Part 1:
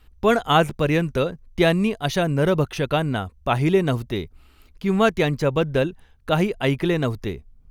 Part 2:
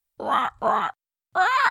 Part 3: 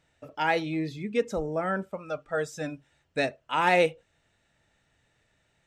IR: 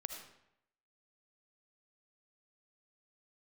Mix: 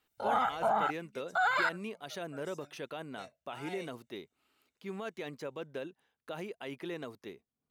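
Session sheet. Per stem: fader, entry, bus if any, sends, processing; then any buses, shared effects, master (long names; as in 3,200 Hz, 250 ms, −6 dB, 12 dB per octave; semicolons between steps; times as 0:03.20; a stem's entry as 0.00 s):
−15.0 dB, 0.00 s, no bus, no send, high-pass filter 260 Hz 12 dB per octave; brickwall limiter −15 dBFS, peak gain reduction 10.5 dB
−1.0 dB, 0.00 s, bus A, no send, two-band tremolo in antiphase 2.6 Hz, depth 70%, crossover 1,000 Hz
−14.5 dB, 0.00 s, bus A, no send, first-order pre-emphasis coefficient 0.8
bus A: 0.0 dB, comb filter 1.4 ms, depth 83%; brickwall limiter −21 dBFS, peak gain reduction 11.5 dB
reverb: not used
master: low-shelf EQ 63 Hz −8 dB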